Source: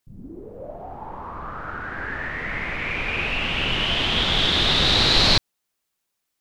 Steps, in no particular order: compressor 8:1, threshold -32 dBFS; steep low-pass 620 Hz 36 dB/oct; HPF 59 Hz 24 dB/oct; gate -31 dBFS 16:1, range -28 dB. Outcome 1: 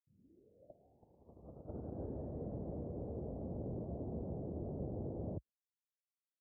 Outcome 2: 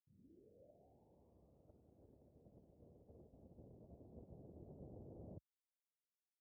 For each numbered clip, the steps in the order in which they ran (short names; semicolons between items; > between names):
HPF > gate > compressor > steep low-pass; HPF > compressor > gate > steep low-pass